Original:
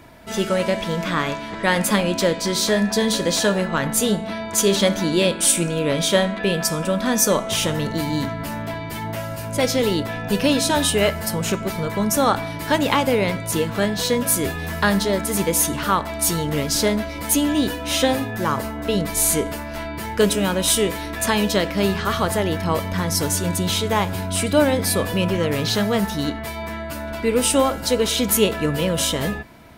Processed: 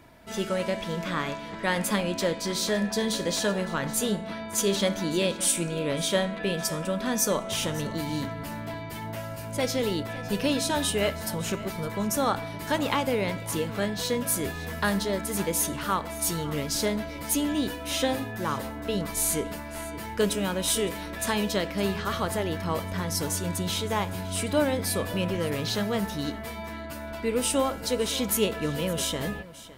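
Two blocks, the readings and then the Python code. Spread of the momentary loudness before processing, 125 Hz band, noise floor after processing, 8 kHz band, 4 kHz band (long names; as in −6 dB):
7 LU, −7.5 dB, −38 dBFS, −7.5 dB, −7.5 dB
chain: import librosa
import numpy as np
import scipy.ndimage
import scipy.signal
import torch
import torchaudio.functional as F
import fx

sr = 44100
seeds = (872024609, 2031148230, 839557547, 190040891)

y = x + 10.0 ** (-17.5 / 20.0) * np.pad(x, (int(561 * sr / 1000.0), 0))[:len(x)]
y = y * 10.0 ** (-7.5 / 20.0)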